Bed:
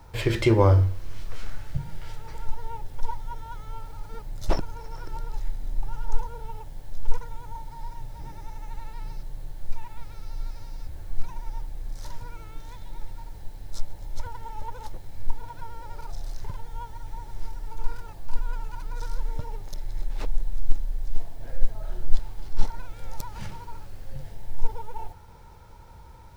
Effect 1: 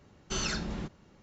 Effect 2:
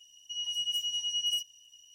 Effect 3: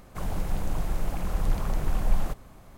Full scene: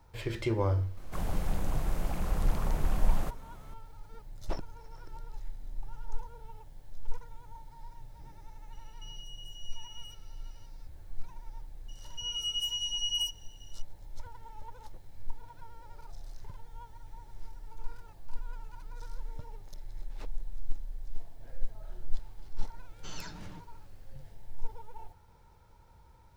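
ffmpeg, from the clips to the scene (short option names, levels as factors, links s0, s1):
-filter_complex "[2:a]asplit=2[s0][s1];[0:a]volume=0.282[s2];[s0]alimiter=level_in=3.35:limit=0.0631:level=0:latency=1:release=71,volume=0.299[s3];[1:a]aecho=1:1:6.6:0.65[s4];[3:a]atrim=end=2.77,asetpts=PTS-STARTPTS,volume=0.75,afade=t=in:d=0.004:c=hsin,afade=t=out:st=2.766:d=0.004:c=hsin,adelay=970[s5];[s3]atrim=end=1.94,asetpts=PTS-STARTPTS,volume=0.299,afade=t=in:d=0.004:c=hsin,afade=t=out:st=1.936:d=0.004:c=hsin,adelay=8720[s6];[s1]atrim=end=1.94,asetpts=PTS-STARTPTS,volume=0.891,afade=t=in:d=0.004:c=hsin,afade=t=out:st=1.936:d=0.004:c=hsin,adelay=11880[s7];[s4]atrim=end=1.22,asetpts=PTS-STARTPTS,volume=0.211,afade=t=in:d=0.004:c=hsin,afade=t=out:st=1.216:d=0.004:c=hsin,adelay=22730[s8];[s2][s5][s6][s7][s8]amix=inputs=5:normalize=0"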